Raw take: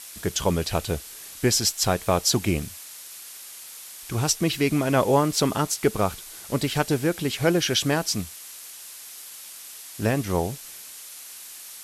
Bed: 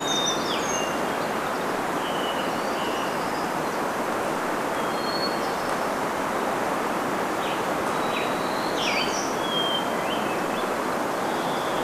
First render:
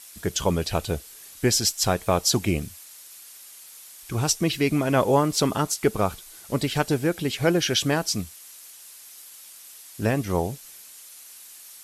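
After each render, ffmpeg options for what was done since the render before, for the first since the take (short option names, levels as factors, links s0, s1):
-af "afftdn=nr=6:nf=-42"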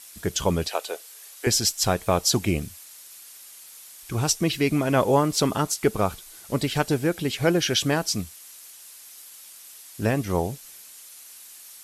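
-filter_complex "[0:a]asettb=1/sr,asplit=3[s0][s1][s2];[s0]atrim=end=0.684[s3];[s1]atrim=start=0.68:end=1.47,asetpts=PTS-STARTPTS,afade=t=in:d=0.004:c=qsin,afade=t=out:st=0.786:d=0.004:c=qsin,highpass=f=440:w=0.5412,highpass=f=440:w=1.3066[s4];[s2]atrim=start=1.466[s5];[s3][s4]acrossfade=d=0.004:c1=hsin:c2=qsin[s6];[s6][s5]acrossfade=d=0.004:c1=qsin:c2=hsin"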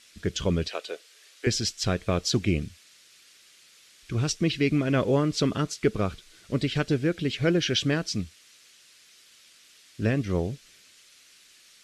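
-af "lowpass=4300,equalizer=f=860:t=o:w=0.84:g=-14"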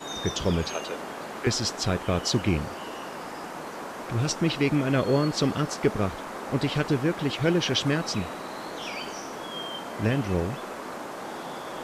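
-filter_complex "[1:a]volume=0.299[s0];[0:a][s0]amix=inputs=2:normalize=0"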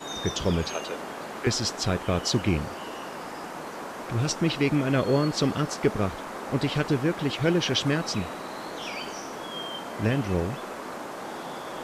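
-af anull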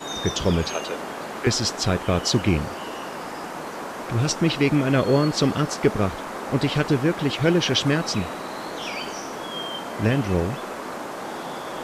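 -af "volume=1.58"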